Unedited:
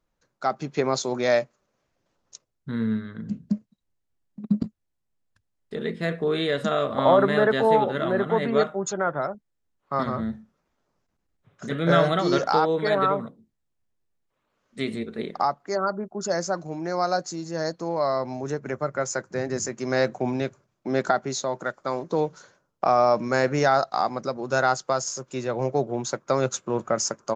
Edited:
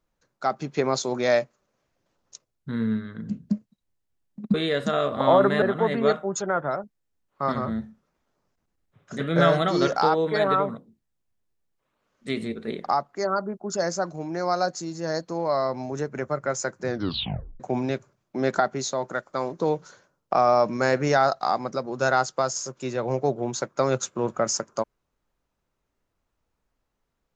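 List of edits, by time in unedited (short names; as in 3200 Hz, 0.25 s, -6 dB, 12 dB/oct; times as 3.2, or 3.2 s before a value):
4.54–6.32 cut
7.4–8.13 cut
19.38 tape stop 0.73 s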